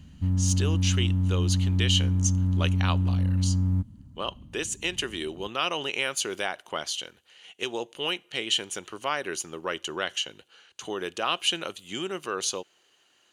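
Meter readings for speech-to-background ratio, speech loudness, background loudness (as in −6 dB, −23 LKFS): −5.0 dB, −30.5 LKFS, −25.5 LKFS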